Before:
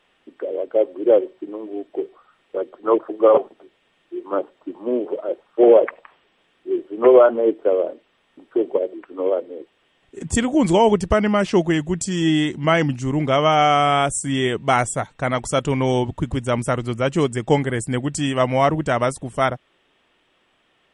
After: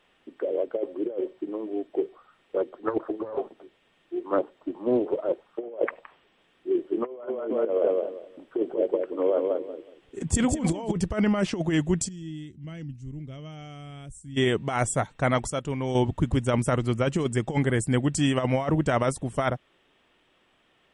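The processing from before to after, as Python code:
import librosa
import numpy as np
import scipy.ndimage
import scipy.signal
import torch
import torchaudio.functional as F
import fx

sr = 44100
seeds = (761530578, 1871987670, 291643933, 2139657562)

y = fx.doppler_dist(x, sr, depth_ms=0.23, at=(2.6, 5.46))
y = fx.echo_feedback(y, sr, ms=185, feedback_pct=22, wet_db=-5, at=(6.91, 10.91), fade=0.02)
y = fx.tone_stack(y, sr, knobs='10-0-1', at=(12.07, 14.36), fade=0.02)
y = fx.edit(y, sr, fx.fade_down_up(start_s=15.33, length_s=0.79, db=-8.5, fade_s=0.17, curve='log'), tone=tone)
y = fx.over_compress(y, sr, threshold_db=-19.0, ratio=-0.5)
y = fx.low_shelf(y, sr, hz=350.0, db=3.0)
y = y * 10.0 ** (-5.5 / 20.0)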